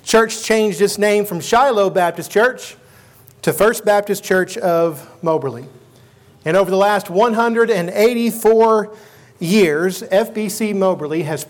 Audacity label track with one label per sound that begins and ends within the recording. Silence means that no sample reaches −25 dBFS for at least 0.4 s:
3.280000	5.630000	sound
6.460000	8.850000	sound